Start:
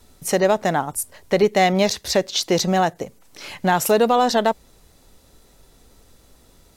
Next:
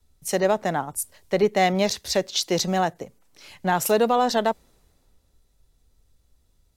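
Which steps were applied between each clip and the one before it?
three bands expanded up and down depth 40%; trim -4 dB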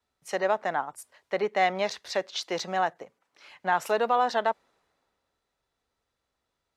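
band-pass filter 1.3 kHz, Q 0.81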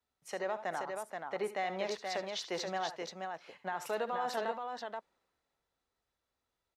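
peak limiter -19.5 dBFS, peak gain reduction 8.5 dB; on a send: multi-tap echo 67/75/478 ms -15/-14.5/-4.5 dB; on the sum: trim -7 dB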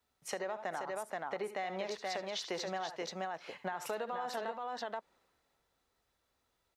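compression, threshold -42 dBFS, peak gain reduction 11.5 dB; trim +6.5 dB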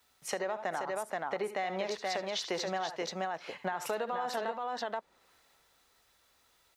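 tape noise reduction on one side only encoder only; trim +4 dB

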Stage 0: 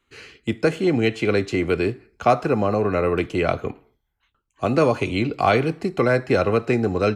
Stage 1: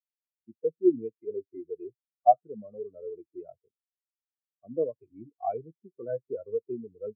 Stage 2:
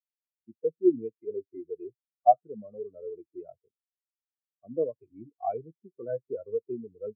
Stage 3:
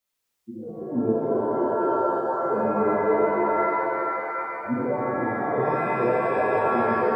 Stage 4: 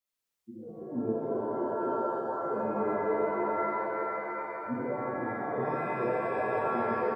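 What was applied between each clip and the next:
spectral contrast expander 4:1; trim -1 dB
no audible change
compressor with a negative ratio -37 dBFS, ratio -1; pitch-shifted reverb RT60 3 s, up +7 st, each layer -2 dB, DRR -6.5 dB; trim +4.5 dB
delay 897 ms -11 dB; trim -8 dB

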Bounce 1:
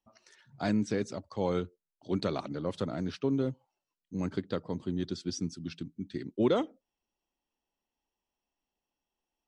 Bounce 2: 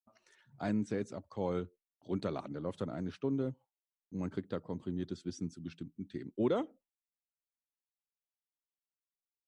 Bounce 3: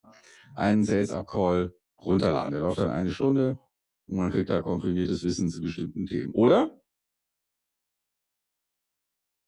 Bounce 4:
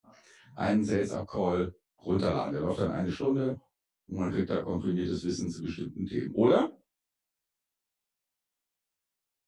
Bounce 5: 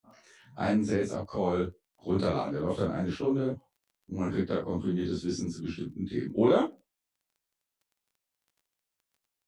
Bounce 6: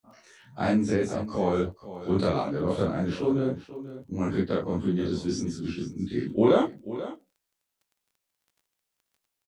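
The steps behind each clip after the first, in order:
dynamic bell 3.2 kHz, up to -3 dB, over -51 dBFS, Q 0.76; gate with hold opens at -54 dBFS; peaking EQ 5 kHz -7 dB 0.69 oct; trim -4.5 dB
every event in the spectrogram widened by 60 ms; trim +8.5 dB
detune thickener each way 56 cents
crackle 14 per s -53 dBFS
delay 486 ms -14 dB; trim +3 dB

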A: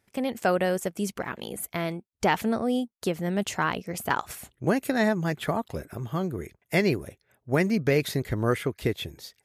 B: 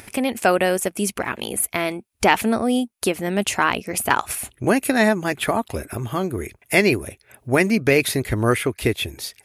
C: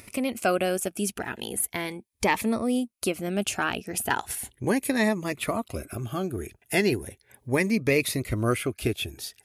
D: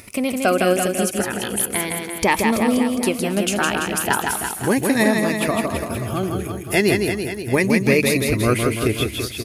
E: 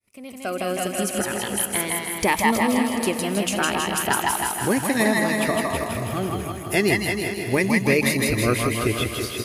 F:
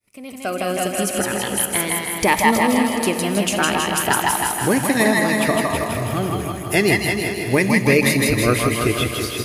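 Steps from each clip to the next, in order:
graphic EQ with 31 bands 160 Hz -12 dB, 500 Hz -3 dB, 2.5 kHz +6 dB, 10 kHz +10 dB; in parallel at +0.5 dB: upward compressor, threshold -27 dBFS; on the sum: trim +1 dB
Shepard-style phaser rising 0.37 Hz; trim -5 dB
word length cut 12-bit, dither triangular; reverse bouncing-ball echo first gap 160 ms, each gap 1.1×, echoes 5; trim +5.5 dB
fade-in on the opening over 1.17 s; thinning echo 159 ms, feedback 55%, high-pass 220 Hz, level -4 dB; trim -3 dB
reverberation RT60 1.7 s, pre-delay 7 ms, DRR 12 dB; trim +3.5 dB

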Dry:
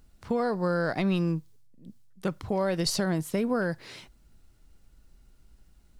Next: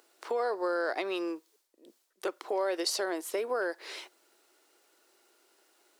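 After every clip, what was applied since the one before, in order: elliptic high-pass 350 Hz, stop band 60 dB; compression 1.5:1, threshold -48 dBFS, peak gain reduction 8.5 dB; trim +6.5 dB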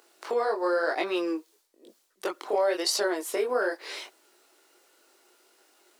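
chorus voices 2, 0.98 Hz, delay 22 ms, depth 3 ms; trim +7.5 dB

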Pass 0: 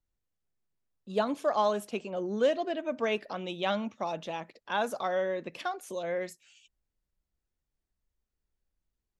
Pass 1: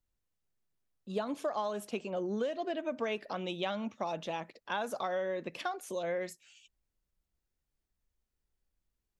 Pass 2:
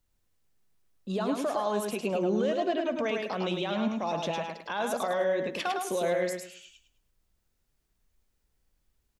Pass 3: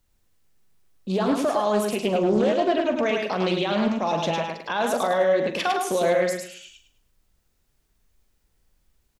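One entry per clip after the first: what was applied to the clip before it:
compression 12:1, threshold -30 dBFS, peak gain reduction 10.5 dB
peak limiter -30 dBFS, peak gain reduction 10 dB; on a send: feedback delay 105 ms, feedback 27%, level -4 dB; on the sum: trim +8 dB
doubling 43 ms -11 dB; loudspeaker Doppler distortion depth 0.29 ms; trim +6.5 dB

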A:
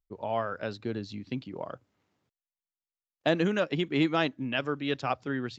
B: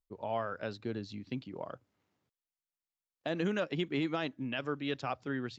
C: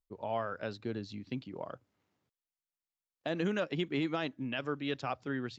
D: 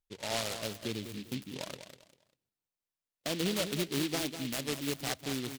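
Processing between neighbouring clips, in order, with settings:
peak limiter -19 dBFS, peak gain reduction 7.5 dB; trim -4 dB
no audible change
feedback delay 198 ms, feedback 27%, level -9.5 dB; delay time shaken by noise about 3.1 kHz, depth 0.2 ms

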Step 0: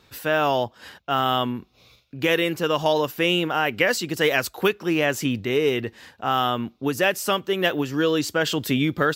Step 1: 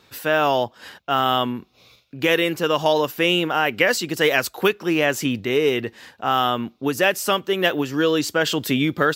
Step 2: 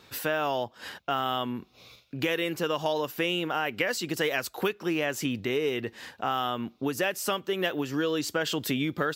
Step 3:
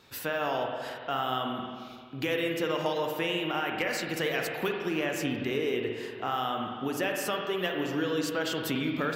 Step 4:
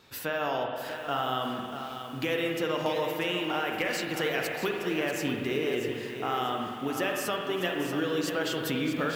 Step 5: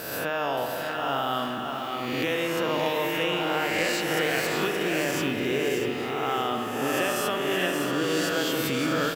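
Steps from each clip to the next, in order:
bass shelf 83 Hz -11 dB; trim +2.5 dB
compression 2.5:1, threshold -29 dBFS, peak gain reduction 11 dB
overload inside the chain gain 14.5 dB; on a send at -1.5 dB: reverberation RT60 2.0 s, pre-delay 44 ms; on the sum: trim -3.5 dB
bit-crushed delay 639 ms, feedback 35%, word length 8-bit, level -8.5 dB
reverse spectral sustain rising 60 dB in 1.35 s; delay 574 ms -6.5 dB

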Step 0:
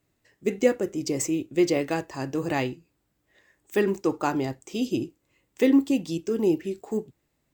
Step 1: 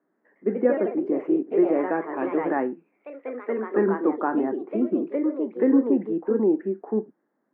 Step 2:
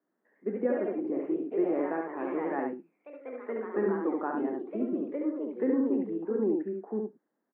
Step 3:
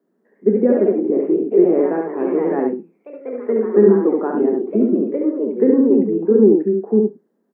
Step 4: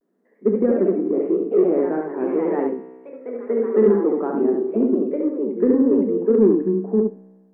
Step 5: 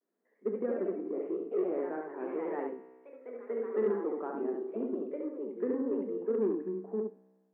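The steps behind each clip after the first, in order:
Chebyshev band-pass 200–1700 Hz, order 4; in parallel at +2 dB: peak limiter -20 dBFS, peak gain reduction 10.5 dB; on the sum: ever faster or slower copies 134 ms, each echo +2 st, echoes 3, each echo -6 dB; trim -3 dB
delay 70 ms -3.5 dB; trim -8.5 dB
small resonant body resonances 210/400 Hz, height 16 dB, ringing for 35 ms; on a send at -15 dB: reverberation RT60 0.30 s, pre-delay 3 ms; on the sum: trim +3.5 dB
vibrato 0.86 Hz 83 cents; in parallel at -8 dB: saturation -10.5 dBFS, distortion -13 dB; on the sum: feedback comb 64 Hz, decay 1.5 s, harmonics all, mix 60%; trim +1.5 dB
high-pass 680 Hz 6 dB/octave; trim -8.5 dB

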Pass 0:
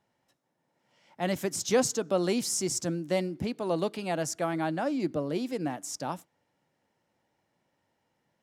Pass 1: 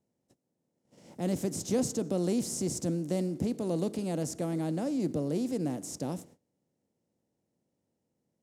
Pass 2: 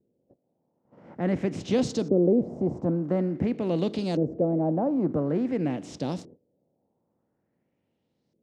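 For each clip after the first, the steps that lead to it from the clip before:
spectral levelling over time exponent 0.6; gate -47 dBFS, range -23 dB; FFT filter 220 Hz 0 dB, 1.5 kHz -18 dB, 8.5 kHz -7 dB
LFO low-pass saw up 0.48 Hz 390–4800 Hz; trim +4.5 dB

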